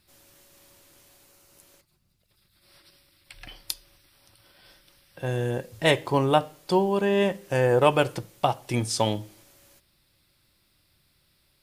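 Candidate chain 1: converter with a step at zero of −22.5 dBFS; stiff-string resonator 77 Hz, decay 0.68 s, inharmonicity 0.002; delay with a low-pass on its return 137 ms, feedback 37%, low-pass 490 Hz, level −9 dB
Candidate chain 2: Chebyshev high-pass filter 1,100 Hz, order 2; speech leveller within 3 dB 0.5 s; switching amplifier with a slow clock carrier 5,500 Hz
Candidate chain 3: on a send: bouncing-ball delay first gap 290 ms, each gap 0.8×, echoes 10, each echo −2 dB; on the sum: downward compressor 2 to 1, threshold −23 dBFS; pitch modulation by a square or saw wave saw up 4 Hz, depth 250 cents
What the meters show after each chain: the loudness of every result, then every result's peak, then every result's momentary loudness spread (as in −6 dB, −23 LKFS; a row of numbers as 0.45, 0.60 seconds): −35.0, −27.5, −26.0 LKFS; −17.5, −9.5, −8.5 dBFS; 7, 2, 16 LU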